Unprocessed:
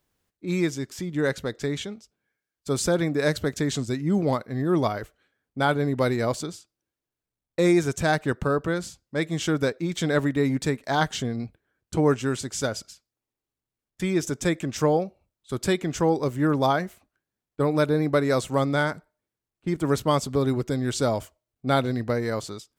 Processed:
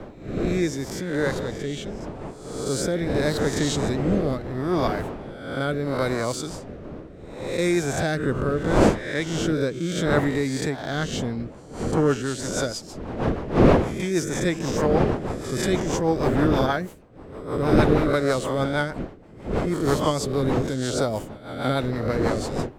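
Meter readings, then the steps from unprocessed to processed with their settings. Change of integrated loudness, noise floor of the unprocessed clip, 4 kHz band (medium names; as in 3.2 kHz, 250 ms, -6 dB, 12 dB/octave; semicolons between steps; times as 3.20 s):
+1.5 dB, under -85 dBFS, +1.5 dB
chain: reverse spectral sustain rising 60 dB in 0.82 s; wind noise 520 Hz -26 dBFS; rotary cabinet horn 0.75 Hz, later 6.3 Hz, at 10.97 s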